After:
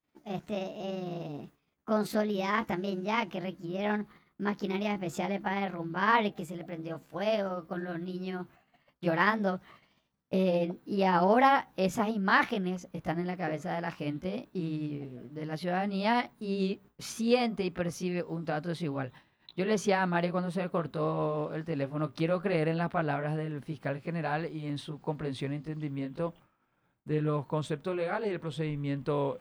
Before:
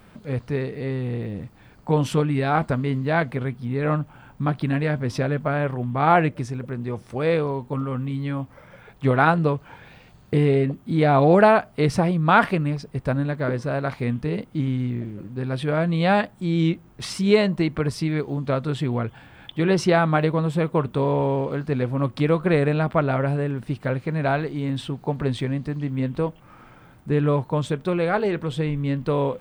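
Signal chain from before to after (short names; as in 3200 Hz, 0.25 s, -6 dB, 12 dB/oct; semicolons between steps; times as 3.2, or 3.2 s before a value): gliding pitch shift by +6.5 st ending unshifted; expander -38 dBFS; low shelf 120 Hz -6 dB; gain -7 dB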